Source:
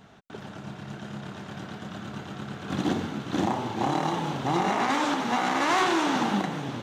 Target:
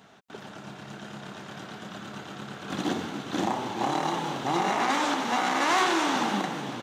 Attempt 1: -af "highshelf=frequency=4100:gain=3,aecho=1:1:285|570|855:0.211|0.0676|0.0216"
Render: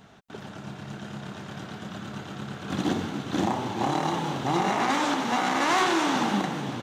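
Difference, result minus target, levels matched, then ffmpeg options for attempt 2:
250 Hz band +2.5 dB
-af "highpass=frequency=260:poles=1,highshelf=frequency=4100:gain=3,aecho=1:1:285|570|855:0.211|0.0676|0.0216"

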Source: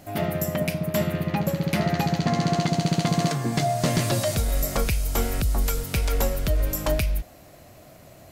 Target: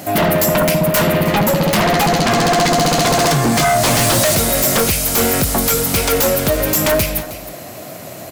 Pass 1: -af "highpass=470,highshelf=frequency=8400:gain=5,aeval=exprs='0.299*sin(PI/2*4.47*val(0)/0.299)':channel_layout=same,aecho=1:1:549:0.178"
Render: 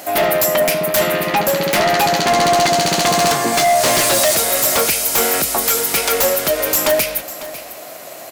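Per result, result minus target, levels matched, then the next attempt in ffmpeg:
echo 234 ms late; 125 Hz band −10.5 dB
-af "highpass=470,highshelf=frequency=8400:gain=5,aeval=exprs='0.299*sin(PI/2*4.47*val(0)/0.299)':channel_layout=same,aecho=1:1:315:0.178"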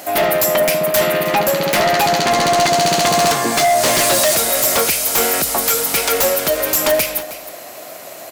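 125 Hz band −10.5 dB
-af "highpass=150,highshelf=frequency=8400:gain=5,aeval=exprs='0.299*sin(PI/2*4.47*val(0)/0.299)':channel_layout=same,aecho=1:1:315:0.178"

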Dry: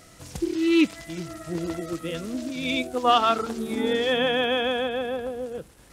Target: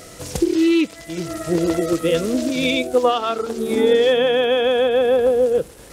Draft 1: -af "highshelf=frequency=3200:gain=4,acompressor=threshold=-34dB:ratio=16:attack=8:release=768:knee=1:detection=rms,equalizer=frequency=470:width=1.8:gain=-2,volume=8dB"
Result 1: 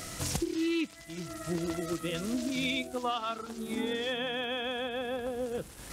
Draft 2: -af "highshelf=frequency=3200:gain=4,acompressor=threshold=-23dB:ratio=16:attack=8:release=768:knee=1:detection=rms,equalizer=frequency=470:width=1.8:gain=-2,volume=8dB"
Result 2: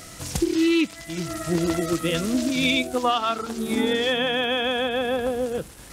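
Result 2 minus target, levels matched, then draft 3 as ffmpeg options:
500 Hz band −4.0 dB
-af "highshelf=frequency=3200:gain=4,acompressor=threshold=-23dB:ratio=16:attack=8:release=768:knee=1:detection=rms,equalizer=frequency=470:width=1.8:gain=9,volume=8dB"

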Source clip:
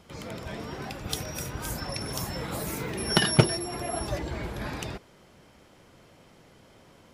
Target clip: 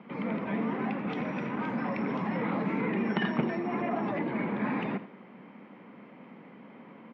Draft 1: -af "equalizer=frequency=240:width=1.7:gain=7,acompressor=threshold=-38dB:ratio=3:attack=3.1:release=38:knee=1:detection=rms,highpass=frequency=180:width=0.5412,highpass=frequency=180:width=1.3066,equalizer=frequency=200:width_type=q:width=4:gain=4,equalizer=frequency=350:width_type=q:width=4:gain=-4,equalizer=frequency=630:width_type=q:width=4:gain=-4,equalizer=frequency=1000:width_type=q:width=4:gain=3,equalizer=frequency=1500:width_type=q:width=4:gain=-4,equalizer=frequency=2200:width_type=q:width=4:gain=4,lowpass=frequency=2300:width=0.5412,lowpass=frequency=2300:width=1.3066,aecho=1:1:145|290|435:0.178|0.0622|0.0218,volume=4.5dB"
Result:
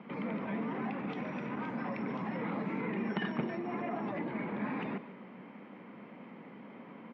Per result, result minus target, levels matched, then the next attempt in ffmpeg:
echo 61 ms late; downward compressor: peak gain reduction +5.5 dB
-af "equalizer=frequency=240:width=1.7:gain=7,acompressor=threshold=-38dB:ratio=3:attack=3.1:release=38:knee=1:detection=rms,highpass=frequency=180:width=0.5412,highpass=frequency=180:width=1.3066,equalizer=frequency=200:width_type=q:width=4:gain=4,equalizer=frequency=350:width_type=q:width=4:gain=-4,equalizer=frequency=630:width_type=q:width=4:gain=-4,equalizer=frequency=1000:width_type=q:width=4:gain=3,equalizer=frequency=1500:width_type=q:width=4:gain=-4,equalizer=frequency=2200:width_type=q:width=4:gain=4,lowpass=frequency=2300:width=0.5412,lowpass=frequency=2300:width=1.3066,aecho=1:1:84|168|252:0.178|0.0622|0.0218,volume=4.5dB"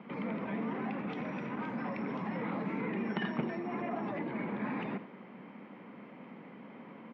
downward compressor: peak gain reduction +5.5 dB
-af "equalizer=frequency=240:width=1.7:gain=7,acompressor=threshold=-29.5dB:ratio=3:attack=3.1:release=38:knee=1:detection=rms,highpass=frequency=180:width=0.5412,highpass=frequency=180:width=1.3066,equalizer=frequency=200:width_type=q:width=4:gain=4,equalizer=frequency=350:width_type=q:width=4:gain=-4,equalizer=frequency=630:width_type=q:width=4:gain=-4,equalizer=frequency=1000:width_type=q:width=4:gain=3,equalizer=frequency=1500:width_type=q:width=4:gain=-4,equalizer=frequency=2200:width_type=q:width=4:gain=4,lowpass=frequency=2300:width=0.5412,lowpass=frequency=2300:width=1.3066,aecho=1:1:84|168|252:0.178|0.0622|0.0218,volume=4.5dB"

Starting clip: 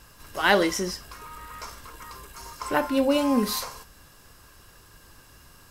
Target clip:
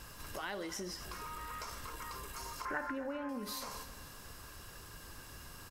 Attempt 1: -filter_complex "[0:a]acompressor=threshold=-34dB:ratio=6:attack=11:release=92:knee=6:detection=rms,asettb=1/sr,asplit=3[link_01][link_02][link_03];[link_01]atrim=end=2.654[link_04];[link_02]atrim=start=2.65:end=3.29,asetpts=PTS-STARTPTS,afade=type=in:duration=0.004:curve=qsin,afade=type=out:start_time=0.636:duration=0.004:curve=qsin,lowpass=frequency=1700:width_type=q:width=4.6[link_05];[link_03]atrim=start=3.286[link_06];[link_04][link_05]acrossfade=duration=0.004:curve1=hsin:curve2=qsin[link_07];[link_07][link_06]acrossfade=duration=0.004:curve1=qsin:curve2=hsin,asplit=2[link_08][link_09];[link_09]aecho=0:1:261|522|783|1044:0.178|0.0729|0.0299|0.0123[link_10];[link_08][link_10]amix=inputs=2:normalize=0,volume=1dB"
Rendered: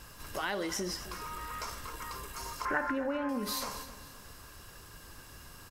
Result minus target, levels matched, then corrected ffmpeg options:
downward compressor: peak gain reduction −6.5 dB
-filter_complex "[0:a]acompressor=threshold=-42dB:ratio=6:attack=11:release=92:knee=6:detection=rms,asettb=1/sr,asplit=3[link_01][link_02][link_03];[link_01]atrim=end=2.654[link_04];[link_02]atrim=start=2.65:end=3.29,asetpts=PTS-STARTPTS,afade=type=in:duration=0.004:curve=qsin,afade=type=out:start_time=0.636:duration=0.004:curve=qsin,lowpass=frequency=1700:width_type=q:width=4.6[link_05];[link_03]atrim=start=3.286[link_06];[link_04][link_05]acrossfade=duration=0.004:curve1=hsin:curve2=qsin[link_07];[link_07][link_06]acrossfade=duration=0.004:curve1=qsin:curve2=hsin,asplit=2[link_08][link_09];[link_09]aecho=0:1:261|522|783|1044:0.178|0.0729|0.0299|0.0123[link_10];[link_08][link_10]amix=inputs=2:normalize=0,volume=1dB"

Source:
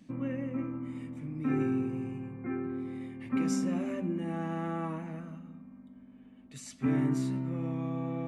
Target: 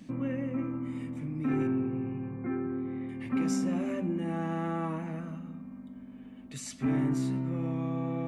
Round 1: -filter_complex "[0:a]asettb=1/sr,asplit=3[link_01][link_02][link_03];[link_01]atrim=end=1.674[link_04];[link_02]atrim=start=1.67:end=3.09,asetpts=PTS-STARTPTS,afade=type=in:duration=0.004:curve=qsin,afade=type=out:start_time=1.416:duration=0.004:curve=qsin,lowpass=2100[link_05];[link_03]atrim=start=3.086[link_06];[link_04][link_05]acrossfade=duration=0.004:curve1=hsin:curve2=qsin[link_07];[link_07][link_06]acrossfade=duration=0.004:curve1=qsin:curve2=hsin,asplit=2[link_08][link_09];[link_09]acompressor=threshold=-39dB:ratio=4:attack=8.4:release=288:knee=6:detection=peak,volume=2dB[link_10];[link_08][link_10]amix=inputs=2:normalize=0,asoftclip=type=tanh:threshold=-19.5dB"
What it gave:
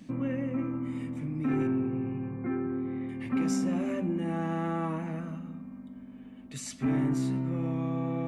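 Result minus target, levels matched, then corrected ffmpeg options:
downward compressor: peak gain reduction −5 dB
-filter_complex "[0:a]asettb=1/sr,asplit=3[link_01][link_02][link_03];[link_01]atrim=end=1.674[link_04];[link_02]atrim=start=1.67:end=3.09,asetpts=PTS-STARTPTS,afade=type=in:duration=0.004:curve=qsin,afade=type=out:start_time=1.416:duration=0.004:curve=qsin,lowpass=2100[link_05];[link_03]atrim=start=3.086[link_06];[link_04][link_05]acrossfade=duration=0.004:curve1=hsin:curve2=qsin[link_07];[link_07][link_06]acrossfade=duration=0.004:curve1=qsin:curve2=hsin,asplit=2[link_08][link_09];[link_09]acompressor=threshold=-45.5dB:ratio=4:attack=8.4:release=288:knee=6:detection=peak,volume=2dB[link_10];[link_08][link_10]amix=inputs=2:normalize=0,asoftclip=type=tanh:threshold=-19.5dB"

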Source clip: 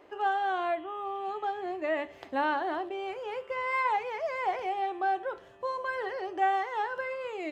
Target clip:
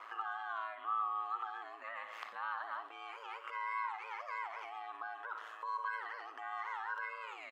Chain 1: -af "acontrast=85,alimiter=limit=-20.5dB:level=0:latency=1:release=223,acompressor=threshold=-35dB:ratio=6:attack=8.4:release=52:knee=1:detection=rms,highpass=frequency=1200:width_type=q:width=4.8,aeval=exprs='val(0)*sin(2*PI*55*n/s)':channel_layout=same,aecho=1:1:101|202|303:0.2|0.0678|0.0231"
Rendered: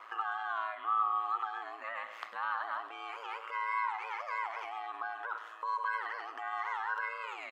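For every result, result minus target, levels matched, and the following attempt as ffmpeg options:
echo 43 ms late; downward compressor: peak gain reduction −5 dB
-af "acontrast=85,alimiter=limit=-20.5dB:level=0:latency=1:release=223,acompressor=threshold=-35dB:ratio=6:attack=8.4:release=52:knee=1:detection=rms,highpass=frequency=1200:width_type=q:width=4.8,aeval=exprs='val(0)*sin(2*PI*55*n/s)':channel_layout=same,aecho=1:1:58|116|174:0.2|0.0678|0.0231"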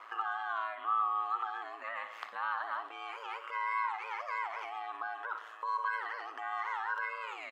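downward compressor: peak gain reduction −5 dB
-af "acontrast=85,alimiter=limit=-20.5dB:level=0:latency=1:release=223,acompressor=threshold=-41dB:ratio=6:attack=8.4:release=52:knee=1:detection=rms,highpass=frequency=1200:width_type=q:width=4.8,aeval=exprs='val(0)*sin(2*PI*55*n/s)':channel_layout=same,aecho=1:1:58|116|174:0.2|0.0678|0.0231"

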